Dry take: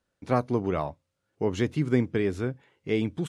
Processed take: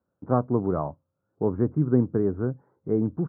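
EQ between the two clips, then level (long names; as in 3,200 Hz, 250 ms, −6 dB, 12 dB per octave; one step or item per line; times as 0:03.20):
high-pass filter 100 Hz
Butterworth low-pass 1,400 Hz 48 dB per octave
low-shelf EQ 260 Hz +6 dB
0.0 dB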